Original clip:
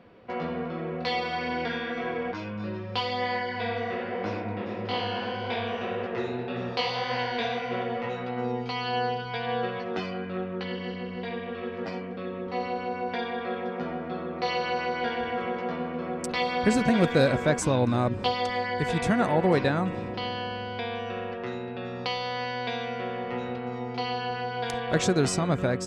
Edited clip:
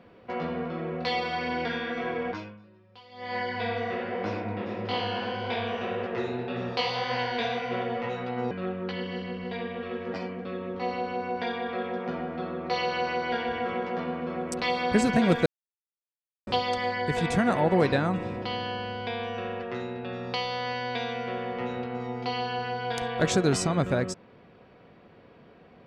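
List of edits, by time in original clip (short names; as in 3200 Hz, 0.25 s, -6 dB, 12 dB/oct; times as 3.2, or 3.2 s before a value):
2.35–3.4 dip -22.5 dB, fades 0.34 s quadratic
8.51–10.23 cut
17.18–18.19 mute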